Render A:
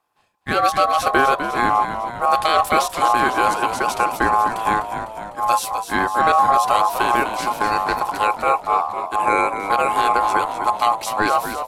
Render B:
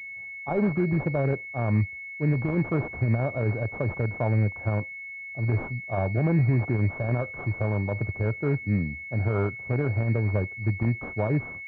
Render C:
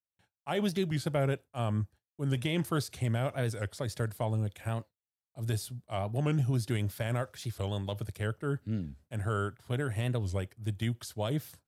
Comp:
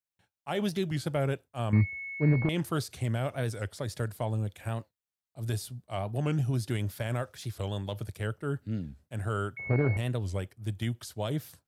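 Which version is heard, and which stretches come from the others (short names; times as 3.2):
C
1.73–2.49 from B
9.57–9.97 from B
not used: A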